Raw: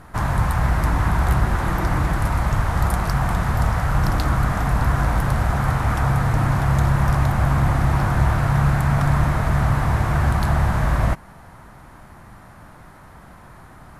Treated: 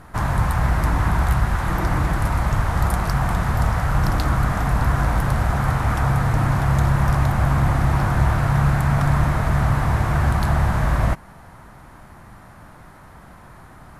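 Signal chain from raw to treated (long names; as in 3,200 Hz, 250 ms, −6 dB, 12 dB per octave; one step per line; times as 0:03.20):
0:01.25–0:01.70: parametric band 350 Hz −5.5 dB 1.5 octaves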